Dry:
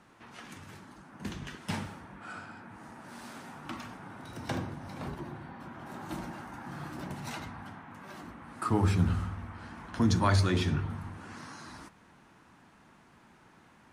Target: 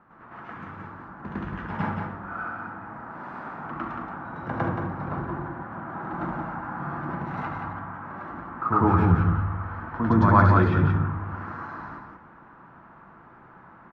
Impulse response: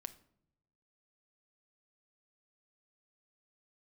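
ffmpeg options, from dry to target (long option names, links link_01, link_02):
-filter_complex "[0:a]lowpass=frequency=1300:width_type=q:width=2.1,aecho=1:1:176:0.531,asplit=2[link_01][link_02];[1:a]atrim=start_sample=2205,adelay=105[link_03];[link_02][link_03]afir=irnorm=-1:irlink=0,volume=10dB[link_04];[link_01][link_04]amix=inputs=2:normalize=0,volume=-1dB"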